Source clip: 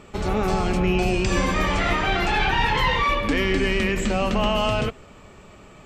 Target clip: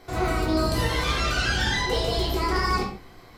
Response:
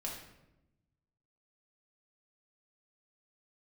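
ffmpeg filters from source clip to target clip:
-filter_complex "[1:a]atrim=start_sample=2205,afade=t=out:st=0.35:d=0.01,atrim=end_sample=15876[a];[0:a][a]afir=irnorm=-1:irlink=0,asetrate=76440,aresample=44100,volume=-4dB"

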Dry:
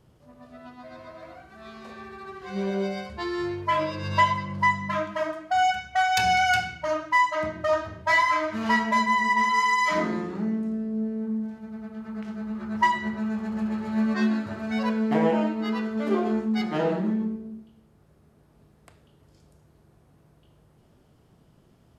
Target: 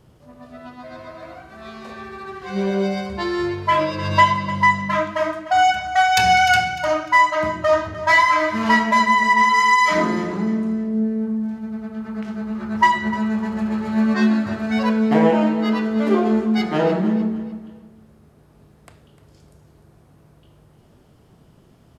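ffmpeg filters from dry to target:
-af "aecho=1:1:301|602|903:0.2|0.0638|0.0204,volume=6.5dB"

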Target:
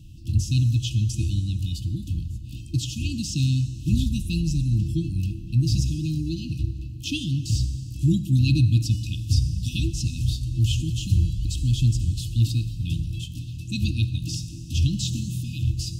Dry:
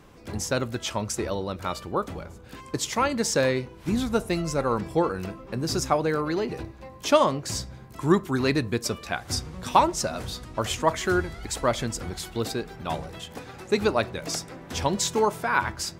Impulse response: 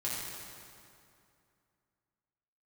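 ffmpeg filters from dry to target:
-filter_complex "[0:a]asplit=2[a][b];[1:a]atrim=start_sample=2205[c];[b][c]afir=irnorm=-1:irlink=0,volume=-15dB[d];[a][d]amix=inputs=2:normalize=0,afftfilt=real='re*(1-between(b*sr/4096,340,2500))':imag='im*(1-between(b*sr/4096,340,2500))':win_size=4096:overlap=0.75,acrossover=split=5000[e][f];[f]acompressor=threshold=-37dB:ratio=4:attack=1:release=60[g];[e][g]amix=inputs=2:normalize=0,lowshelf=f=160:t=q:w=1.5:g=11"

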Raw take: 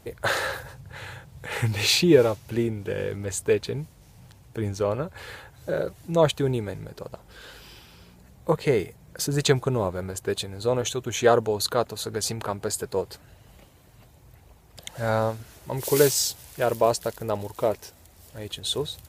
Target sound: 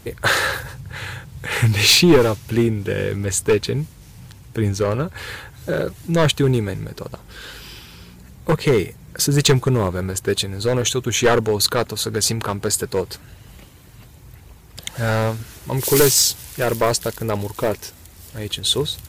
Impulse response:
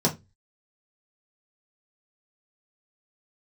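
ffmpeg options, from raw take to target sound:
-af "acontrast=67,aeval=exprs='clip(val(0),-1,0.266)':c=same,equalizer=f=650:w=1.4:g=-7.5,volume=3dB"

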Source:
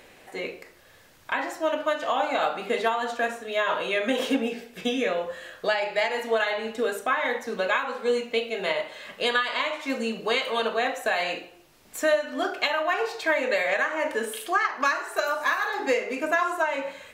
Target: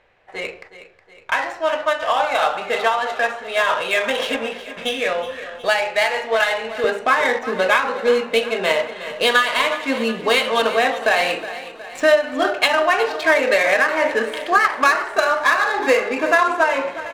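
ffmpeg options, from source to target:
-af "agate=range=-11dB:threshold=-46dB:ratio=16:detection=peak,asetnsamples=n=441:p=0,asendcmd='6.84 equalizer g -2',equalizer=f=260:w=1:g=-13.5,adynamicsmooth=sensitivity=6.5:basefreq=2.4k,aecho=1:1:366|732|1098|1464|1830:0.2|0.106|0.056|0.0297|0.0157,volume=8.5dB"

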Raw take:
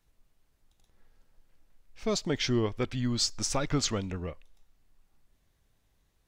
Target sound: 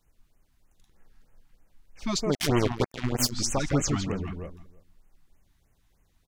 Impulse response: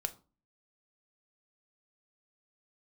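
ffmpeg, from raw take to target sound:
-filter_complex "[0:a]asplit=2[a][b];[b]adelay=165,lowpass=f=1.8k:p=1,volume=-4dB,asplit=2[c][d];[d]adelay=165,lowpass=f=1.8k:p=1,volume=0.29,asplit=2[e][f];[f]adelay=165,lowpass=f=1.8k:p=1,volume=0.29,asplit=2[g][h];[h]adelay=165,lowpass=f=1.8k:p=1,volume=0.29[i];[a][c][e][g][i]amix=inputs=5:normalize=0,asplit=3[j][k][l];[j]afade=t=out:st=2.33:d=0.02[m];[k]acrusher=bits=3:mix=0:aa=0.5,afade=t=in:st=2.33:d=0.02,afade=t=out:st=3.31:d=0.02[n];[l]afade=t=in:st=3.31:d=0.02[o];[m][n][o]amix=inputs=3:normalize=0,afftfilt=real='re*(1-between(b*sr/1024,440*pow(4500/440,0.5+0.5*sin(2*PI*3.2*pts/sr))/1.41,440*pow(4500/440,0.5+0.5*sin(2*PI*3.2*pts/sr))*1.41))':imag='im*(1-between(b*sr/1024,440*pow(4500/440,0.5+0.5*sin(2*PI*3.2*pts/sr))/1.41,440*pow(4500/440,0.5+0.5*sin(2*PI*3.2*pts/sr))*1.41))':win_size=1024:overlap=0.75,volume=3dB"

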